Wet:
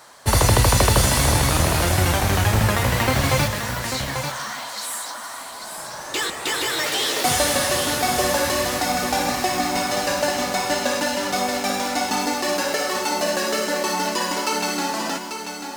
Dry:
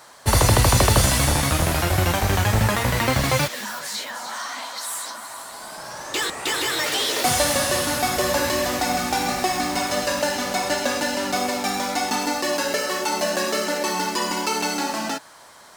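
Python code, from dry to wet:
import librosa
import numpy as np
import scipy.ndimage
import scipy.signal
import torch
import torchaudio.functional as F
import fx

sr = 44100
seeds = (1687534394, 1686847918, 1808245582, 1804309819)

y = x + 10.0 ** (-7.5 / 20.0) * np.pad(x, (int(841 * sr / 1000.0), 0))[:len(x)]
y = fx.echo_crushed(y, sr, ms=155, feedback_pct=55, bits=6, wet_db=-13.5)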